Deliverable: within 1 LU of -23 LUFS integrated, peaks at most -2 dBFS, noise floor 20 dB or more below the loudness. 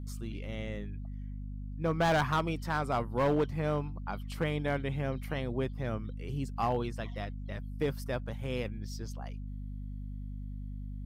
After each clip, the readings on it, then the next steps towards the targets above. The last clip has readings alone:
clipped 0.8%; flat tops at -22.5 dBFS; hum 50 Hz; harmonics up to 250 Hz; hum level -37 dBFS; loudness -34.5 LUFS; peak -22.5 dBFS; loudness target -23.0 LUFS
-> clip repair -22.5 dBFS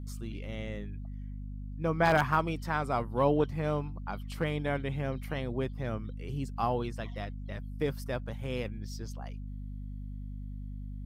clipped 0.0%; hum 50 Hz; harmonics up to 250 Hz; hum level -37 dBFS
-> de-hum 50 Hz, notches 5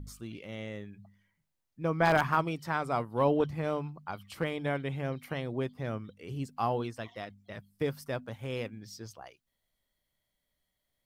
hum none; loudness -33.0 LUFS; peak -13.0 dBFS; loudness target -23.0 LUFS
-> gain +10 dB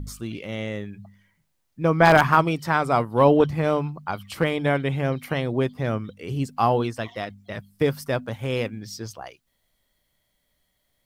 loudness -23.0 LUFS; peak -3.0 dBFS; noise floor -73 dBFS

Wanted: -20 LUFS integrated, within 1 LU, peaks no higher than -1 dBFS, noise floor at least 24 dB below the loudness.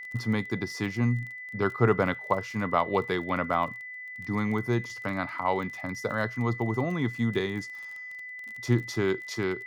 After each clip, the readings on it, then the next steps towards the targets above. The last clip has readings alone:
ticks 29/s; steady tone 2000 Hz; tone level -38 dBFS; loudness -29.5 LUFS; peak -9.5 dBFS; loudness target -20.0 LUFS
-> de-click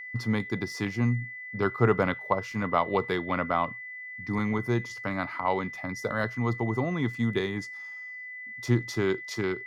ticks 0.10/s; steady tone 2000 Hz; tone level -38 dBFS
-> notch 2000 Hz, Q 30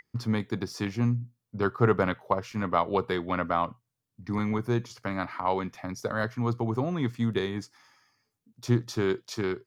steady tone none; loudness -29.5 LUFS; peak -9.5 dBFS; loudness target -20.0 LUFS
-> gain +9.5 dB; limiter -1 dBFS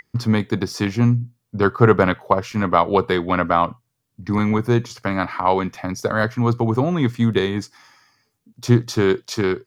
loudness -20.0 LUFS; peak -1.0 dBFS; noise floor -74 dBFS

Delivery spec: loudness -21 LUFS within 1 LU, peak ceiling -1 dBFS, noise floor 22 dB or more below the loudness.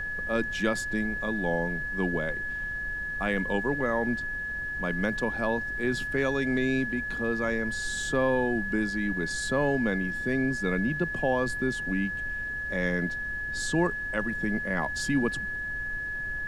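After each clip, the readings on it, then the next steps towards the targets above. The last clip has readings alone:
steady tone 1700 Hz; tone level -31 dBFS; noise floor -34 dBFS; noise floor target -51 dBFS; loudness -28.5 LUFS; peak -13.0 dBFS; loudness target -21.0 LUFS
-> notch 1700 Hz, Q 30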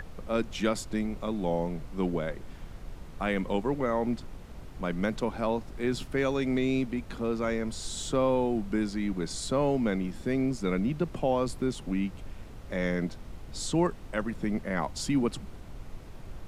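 steady tone none; noise floor -45 dBFS; noise floor target -53 dBFS
-> noise print and reduce 8 dB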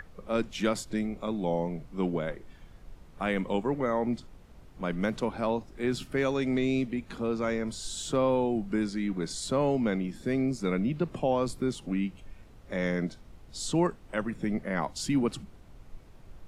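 noise floor -52 dBFS; noise floor target -53 dBFS
-> noise print and reduce 6 dB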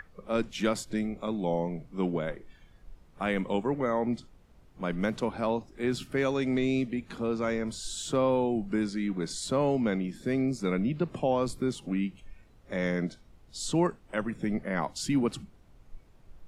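noise floor -58 dBFS; loudness -30.5 LUFS; peak -14.0 dBFS; loudness target -21.0 LUFS
-> gain +9.5 dB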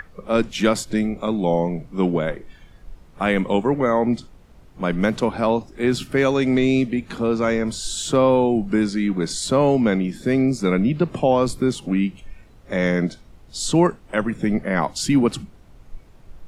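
loudness -21.0 LUFS; peak -4.5 dBFS; noise floor -48 dBFS

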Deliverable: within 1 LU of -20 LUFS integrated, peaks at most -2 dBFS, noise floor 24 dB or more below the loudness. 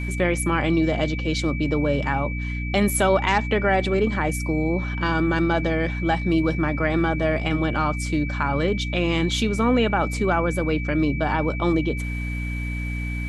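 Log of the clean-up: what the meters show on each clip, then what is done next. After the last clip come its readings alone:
hum 60 Hz; harmonics up to 300 Hz; hum level -25 dBFS; steady tone 2300 Hz; tone level -33 dBFS; loudness -22.5 LUFS; peak -7.0 dBFS; loudness target -20.0 LUFS
-> de-hum 60 Hz, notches 5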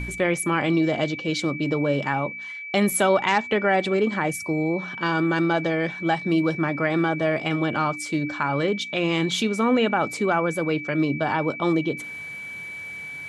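hum none; steady tone 2300 Hz; tone level -33 dBFS
-> notch 2300 Hz, Q 30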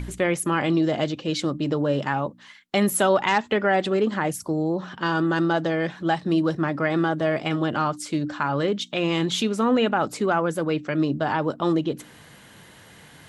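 steady tone none; loudness -24.0 LUFS; peak -7.5 dBFS; loudness target -20.0 LUFS
-> gain +4 dB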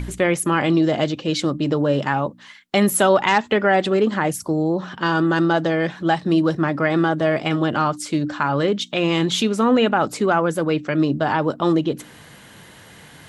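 loudness -20.0 LUFS; peak -3.5 dBFS; noise floor -45 dBFS

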